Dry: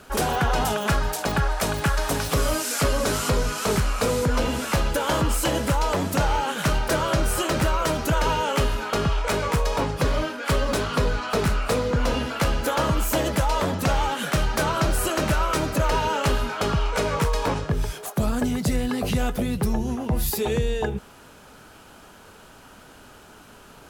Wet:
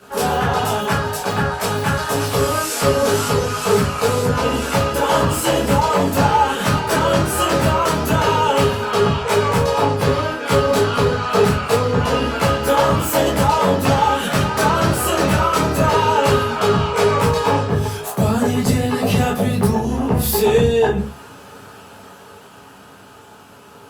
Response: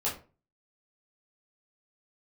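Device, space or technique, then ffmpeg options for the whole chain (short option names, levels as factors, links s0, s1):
far-field microphone of a smart speaker: -filter_complex "[1:a]atrim=start_sample=2205[s0];[0:a][s0]afir=irnorm=-1:irlink=0,highpass=f=86:w=0.5412,highpass=f=86:w=1.3066,dynaudnorm=f=130:g=31:m=3.76,volume=0.794" -ar 48000 -c:a libopus -b:a 48k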